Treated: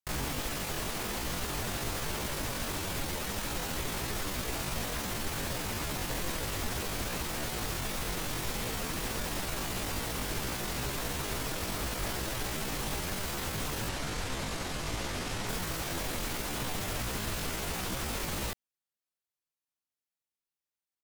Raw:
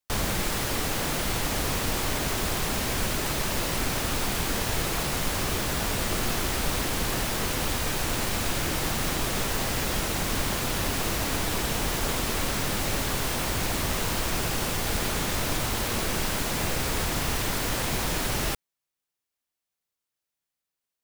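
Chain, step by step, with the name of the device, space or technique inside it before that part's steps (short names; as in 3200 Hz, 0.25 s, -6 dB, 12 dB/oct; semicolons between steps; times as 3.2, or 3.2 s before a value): 13.9–15.5 LPF 5800 Hz 12 dB/oct; chipmunk voice (pitch shift +6.5 st); gain -6.5 dB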